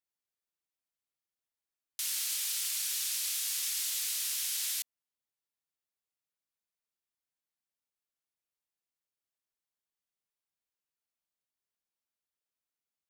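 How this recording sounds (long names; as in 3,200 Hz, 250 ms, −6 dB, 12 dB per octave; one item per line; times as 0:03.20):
background noise floor −93 dBFS
spectral slope +5.5 dB per octave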